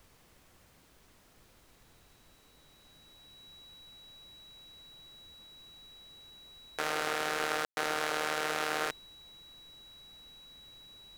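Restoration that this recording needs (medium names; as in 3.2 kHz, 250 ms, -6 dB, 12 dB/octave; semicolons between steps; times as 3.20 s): band-stop 3.9 kHz, Q 30; room tone fill 7.65–7.77 s; noise print and reduce 20 dB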